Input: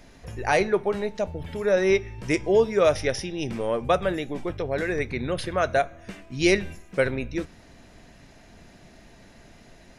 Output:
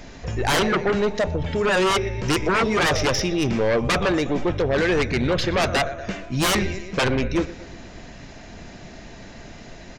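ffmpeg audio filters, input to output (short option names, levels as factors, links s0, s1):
-af "aresample=16000,aresample=44100,aecho=1:1:120|240|360|480|600:0.0891|0.0526|0.031|0.0183|0.0108,aeval=exprs='0.158*sin(PI/2*2*val(0)/0.158)':c=same"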